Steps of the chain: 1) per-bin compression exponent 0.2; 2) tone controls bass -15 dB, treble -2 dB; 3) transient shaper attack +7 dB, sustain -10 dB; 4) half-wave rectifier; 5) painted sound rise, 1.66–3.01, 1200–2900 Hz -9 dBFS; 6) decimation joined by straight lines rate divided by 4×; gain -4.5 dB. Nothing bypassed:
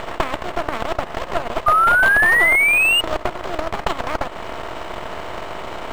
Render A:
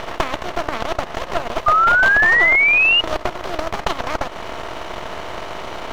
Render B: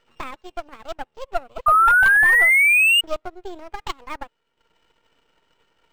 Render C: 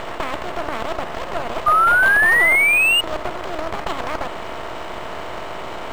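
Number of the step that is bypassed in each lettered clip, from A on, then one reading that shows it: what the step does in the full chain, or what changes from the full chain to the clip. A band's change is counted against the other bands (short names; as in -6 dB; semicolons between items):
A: 6, 4 kHz band +2.0 dB; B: 1, 500 Hz band -8.0 dB; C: 3, crest factor change -3.0 dB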